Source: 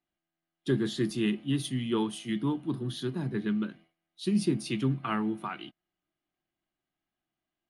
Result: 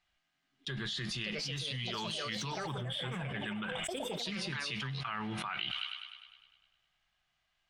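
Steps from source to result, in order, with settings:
delay with pitch and tempo change per echo 744 ms, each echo +5 semitones, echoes 3, each echo −6 dB
noise gate with hold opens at −41 dBFS
guitar amp tone stack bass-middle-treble 10-0-10
on a send: delay with a high-pass on its return 101 ms, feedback 62%, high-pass 3,400 Hz, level −19.5 dB
on the sum: gain on a spectral selection 0:02.67–0:04.19, 3,700–7,500 Hz −19 dB
high-frequency loss of the air 130 metres
envelope flattener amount 100%

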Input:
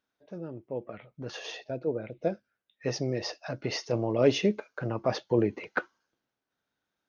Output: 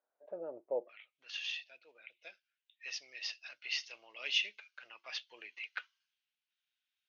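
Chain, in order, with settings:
four-pole ladder band-pass 700 Hz, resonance 50%, from 0:00.87 3,200 Hz
level +9 dB

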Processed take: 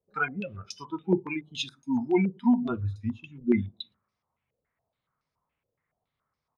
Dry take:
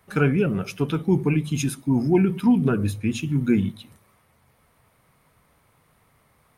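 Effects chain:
repeating echo 114 ms, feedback 42%, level −23 dB
noise reduction from a noise print of the clip's start 21 dB
low-pass on a step sequencer 7.1 Hz 500–5,300 Hz
level −3.5 dB

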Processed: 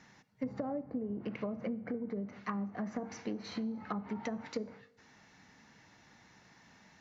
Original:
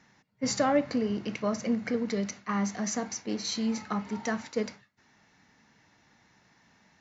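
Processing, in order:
treble cut that deepens with the level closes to 610 Hz, closed at −26 dBFS
downward compressor 10 to 1, threshold −36 dBFS, peak gain reduction 15 dB
convolution reverb RT60 1.1 s, pre-delay 3 ms, DRR 18 dB
level +2 dB

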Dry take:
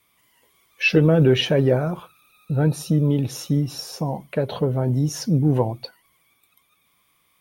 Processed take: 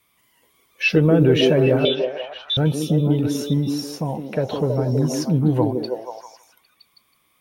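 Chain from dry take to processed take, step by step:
0:01.85–0:02.57: voice inversion scrambler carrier 3,700 Hz
echo through a band-pass that steps 161 ms, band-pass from 300 Hz, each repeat 0.7 octaves, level 0 dB

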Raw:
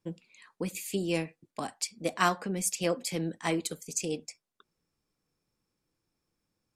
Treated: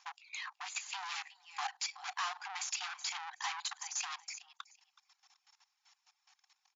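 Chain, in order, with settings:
mu-law and A-law mismatch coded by mu
reverb reduction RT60 0.6 s
output level in coarse steps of 18 dB
parametric band 1,400 Hz −3.5 dB 0.66 octaves
repeating echo 373 ms, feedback 16%, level −22 dB
tube saturation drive 47 dB, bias 0.5
linear-phase brick-wall band-pass 720–7,300 Hz
0:03.58–0:04.24: multiband upward and downward compressor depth 40%
level +15 dB

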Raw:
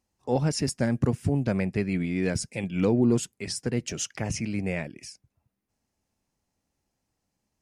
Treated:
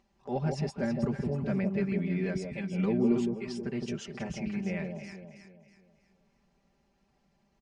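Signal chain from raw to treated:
low-pass filter 3,700 Hz 12 dB per octave
comb filter 5.1 ms, depth 89%
noise gate with hold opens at −51 dBFS
upward compression, threshold −36 dBFS
on a send: delay that swaps between a low-pass and a high-pass 161 ms, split 860 Hz, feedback 61%, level −3.5 dB
on the sum: level −8.5 dB

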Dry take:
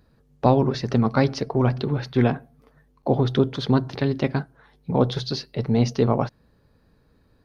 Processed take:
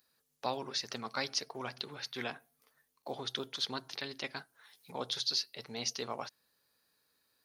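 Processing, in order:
first difference
0:03.13–0:04.92: one half of a high-frequency compander encoder only
level +4 dB

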